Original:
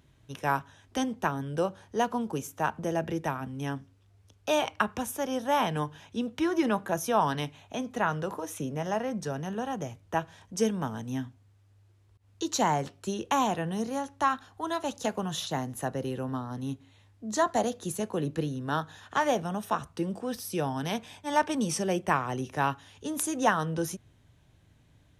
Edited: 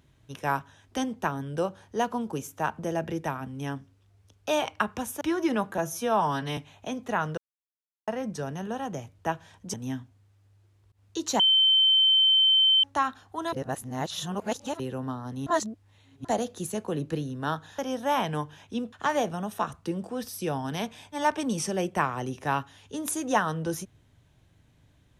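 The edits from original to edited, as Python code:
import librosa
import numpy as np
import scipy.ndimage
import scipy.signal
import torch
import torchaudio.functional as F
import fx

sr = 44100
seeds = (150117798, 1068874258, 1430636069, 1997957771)

y = fx.edit(x, sr, fx.move(start_s=5.21, length_s=1.14, to_s=19.04),
    fx.stretch_span(start_s=6.92, length_s=0.53, factor=1.5),
    fx.silence(start_s=8.25, length_s=0.7),
    fx.cut(start_s=10.61, length_s=0.38),
    fx.bleep(start_s=12.65, length_s=1.44, hz=3090.0, db=-17.0),
    fx.reverse_span(start_s=14.78, length_s=1.27),
    fx.reverse_span(start_s=16.72, length_s=0.78), tone=tone)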